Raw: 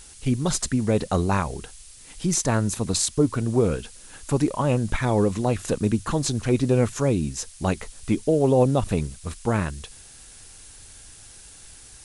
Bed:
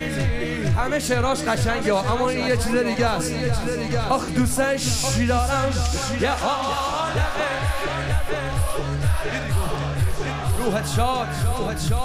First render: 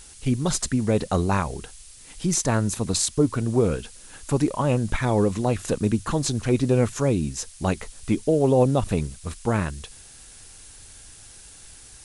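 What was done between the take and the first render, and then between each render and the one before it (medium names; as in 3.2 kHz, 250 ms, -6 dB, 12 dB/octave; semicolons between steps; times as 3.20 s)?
no audible change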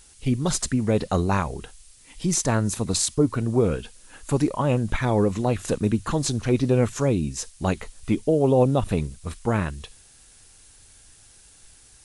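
noise print and reduce 6 dB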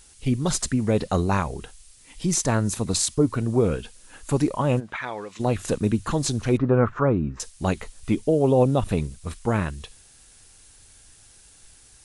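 4.79–5.39 s: band-pass filter 1 kHz -> 3.9 kHz, Q 0.81; 6.57–7.40 s: resonant low-pass 1.3 kHz, resonance Q 3.5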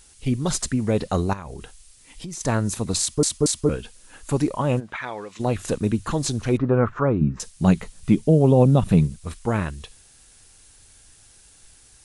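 1.33–2.41 s: compression 8:1, threshold -31 dBFS; 3.00 s: stutter in place 0.23 s, 3 plays; 7.21–9.16 s: peaking EQ 170 Hz +12.5 dB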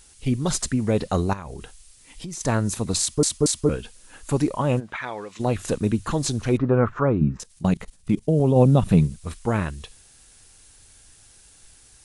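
7.37–8.56 s: level held to a coarse grid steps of 18 dB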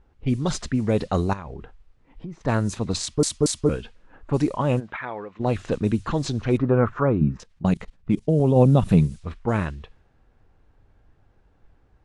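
level-controlled noise filter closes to 920 Hz, open at -16.5 dBFS; treble shelf 10 kHz -10.5 dB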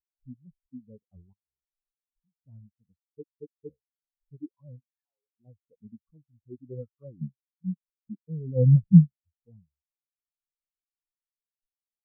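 upward compressor, threshold -25 dBFS; spectral contrast expander 4:1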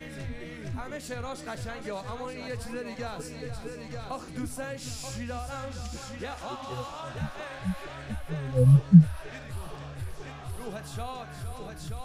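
add bed -15.5 dB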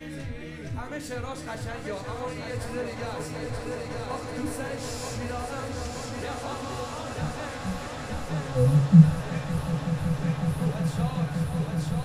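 echo with a slow build-up 186 ms, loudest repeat 8, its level -15.5 dB; FDN reverb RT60 0.48 s, low-frequency decay 0.95×, high-frequency decay 0.8×, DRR 4.5 dB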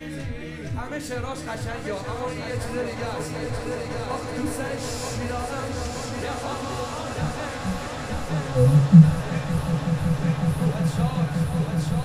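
trim +4 dB; peak limiter -2 dBFS, peak gain reduction 2.5 dB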